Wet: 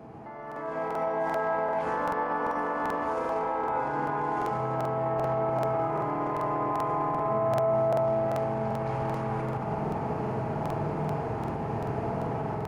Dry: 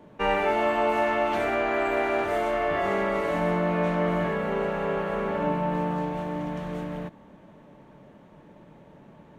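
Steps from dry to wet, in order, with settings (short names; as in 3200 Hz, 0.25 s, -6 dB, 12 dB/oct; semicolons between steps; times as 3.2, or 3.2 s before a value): HPF 59 Hz; bell 1200 Hz +12.5 dB 0.59 oct; limiter -40 dBFS, peak gain reduction 31 dB; AGC gain up to 14 dB; speed mistake 45 rpm record played at 33 rpm; spring tank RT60 2.4 s, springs 47 ms, chirp 60 ms, DRR 2.5 dB; crackling interface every 0.39 s, samples 2048, repeat, from 0.47; gain +3 dB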